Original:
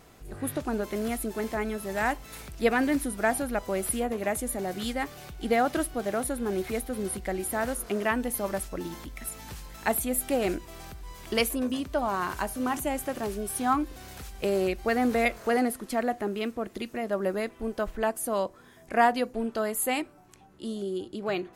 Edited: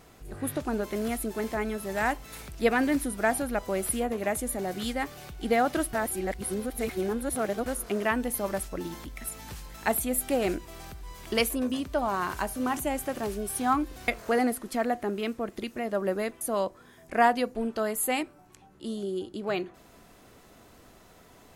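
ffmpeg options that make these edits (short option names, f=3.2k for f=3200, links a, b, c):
-filter_complex "[0:a]asplit=5[a][b][c][d][e];[a]atrim=end=5.932[f];[b]atrim=start=5.928:end=7.662,asetpts=PTS-STARTPTS,areverse[g];[c]atrim=start=7.658:end=14.082[h];[d]atrim=start=15.258:end=17.592[i];[e]atrim=start=18.198[j];[f][g]acrossfade=d=0.004:c1=hsin:c2=hsin[k];[k][h]acrossfade=d=0.004:c1=hsin:c2=hsin[l];[l][i]acrossfade=d=0.004:c1=hsin:c2=hsin[m];[m][j]acrossfade=d=0.004:c1=hsin:c2=hsin"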